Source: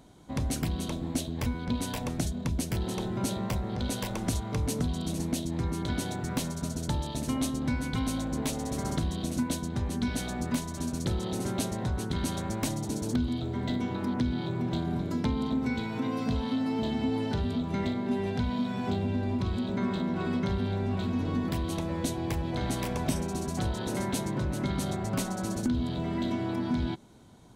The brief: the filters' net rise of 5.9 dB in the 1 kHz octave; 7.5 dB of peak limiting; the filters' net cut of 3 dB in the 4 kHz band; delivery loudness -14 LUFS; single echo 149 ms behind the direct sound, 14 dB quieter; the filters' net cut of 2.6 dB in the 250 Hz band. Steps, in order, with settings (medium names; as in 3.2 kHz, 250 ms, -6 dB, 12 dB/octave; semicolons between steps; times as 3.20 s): peaking EQ 250 Hz -3.5 dB; peaking EQ 1 kHz +7.5 dB; peaking EQ 4 kHz -4 dB; peak limiter -24 dBFS; delay 149 ms -14 dB; trim +19.5 dB